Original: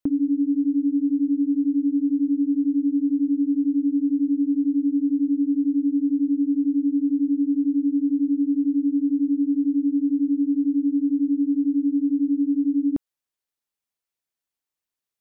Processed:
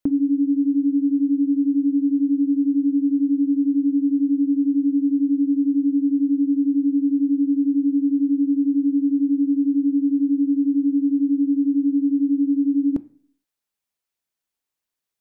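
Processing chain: on a send: reverberation RT60 0.55 s, pre-delay 3 ms, DRR 15 dB; on the sum: trim +2.5 dB

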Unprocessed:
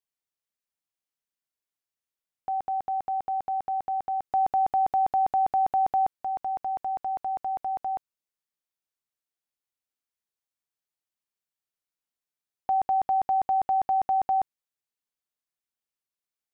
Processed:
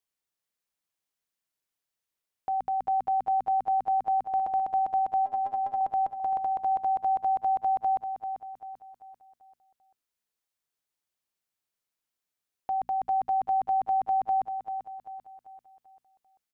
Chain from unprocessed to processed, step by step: in parallel at -1 dB: level held to a coarse grid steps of 9 dB; 5.26–5.81 s: on the sum: inharmonic resonator 120 Hz, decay 0.25 s, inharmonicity 0.03; peak limiter -24.5 dBFS, peak gain reduction 10 dB; hum notches 60/120/180/240 Hz; feedback delay 391 ms, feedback 43%, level -8.5 dB

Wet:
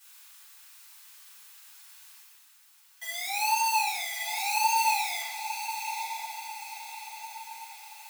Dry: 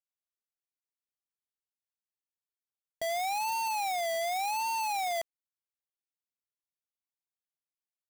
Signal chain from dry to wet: elliptic high-pass 890 Hz, stop band 40 dB; tilt EQ +1.5 dB/octave; reverse; upward compressor, threshold -43 dBFS; reverse; peak limiter -35.5 dBFS, peak gain reduction 13 dB; on a send: echo that smears into a reverb 998 ms, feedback 51%, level -8 dB; on the sum: simulated room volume 210 m³, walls mixed, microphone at 4.8 m; trim +1.5 dB

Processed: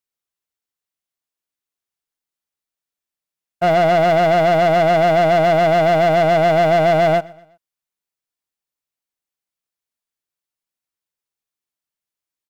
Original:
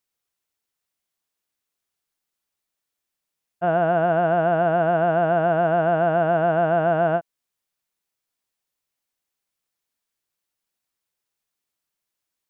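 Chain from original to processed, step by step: waveshaping leveller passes 3; feedback delay 122 ms, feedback 43%, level -23 dB

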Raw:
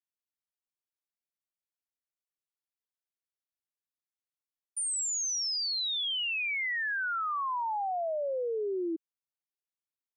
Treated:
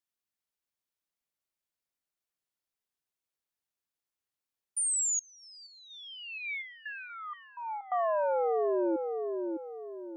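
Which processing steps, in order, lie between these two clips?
filtered feedback delay 609 ms, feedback 40%, low-pass 1.7 kHz, level -4.5 dB; 5.19–7.92 s: stepped vowel filter 4.2 Hz; trim +2.5 dB

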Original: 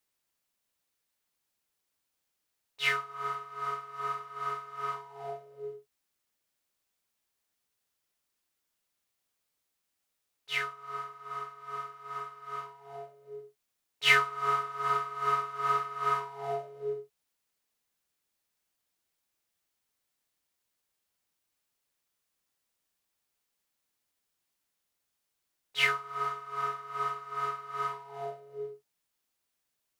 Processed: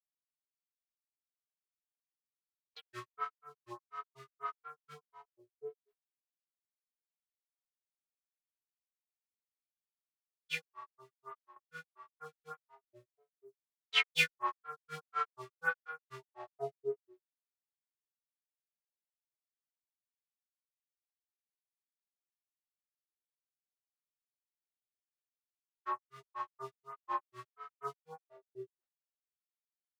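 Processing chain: gate with hold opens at -41 dBFS; granulator 135 ms, grains 4.1 per s, pitch spread up and down by 3 st; lamp-driven phase shifter 1.6 Hz

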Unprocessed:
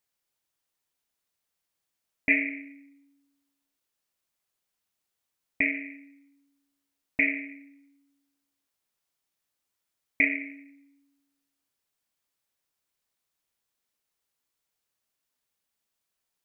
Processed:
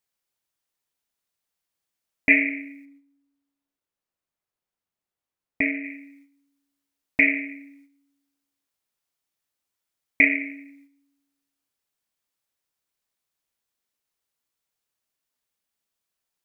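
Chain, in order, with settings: gate -60 dBFS, range -7 dB; 2.85–5.84 s: treble shelf 2.2 kHz -10 dB; trim +6 dB

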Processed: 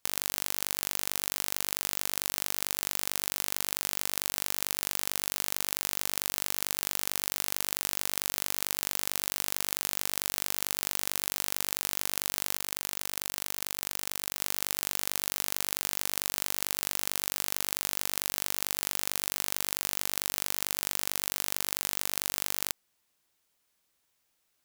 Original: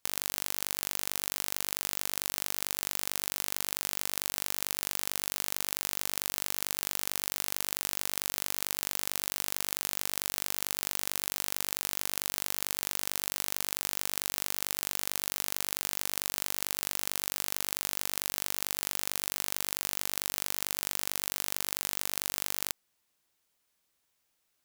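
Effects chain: 12.55–14.39 s: compressor with a negative ratio -38 dBFS, ratio -0.5; trim +1.5 dB

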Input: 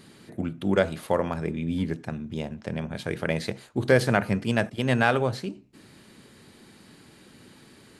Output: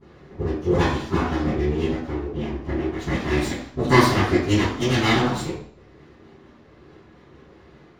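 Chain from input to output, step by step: sawtooth pitch modulation -2.5 st, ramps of 934 ms; level-controlled noise filter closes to 1.6 kHz, open at -21 dBFS; dynamic bell 4.4 kHz, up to +7 dB, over -48 dBFS, Q 0.89; full-wave rectifier; reverberation RT60 0.60 s, pre-delay 9 ms, DRR -22.5 dB; trim -13.5 dB

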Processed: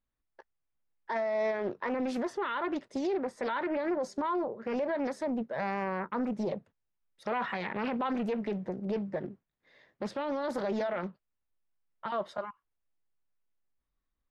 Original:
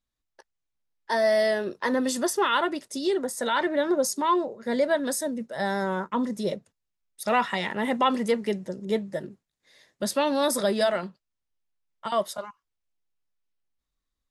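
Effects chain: low-pass 2.2 kHz 12 dB/octave; peak limiter -24.5 dBFS, peak gain reduction 11.5 dB; loudspeaker Doppler distortion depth 0.44 ms

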